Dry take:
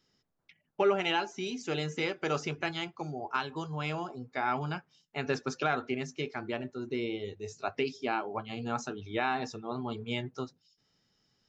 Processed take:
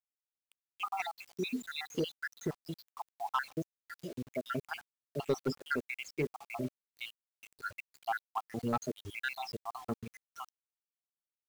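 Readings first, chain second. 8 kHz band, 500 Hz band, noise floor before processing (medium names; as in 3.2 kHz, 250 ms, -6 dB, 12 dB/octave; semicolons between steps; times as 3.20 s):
no reading, -6.5 dB, -76 dBFS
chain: random holes in the spectrogram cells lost 81%; in parallel at -6.5 dB: wavefolder -29.5 dBFS; on the sum: bit crusher 9-bit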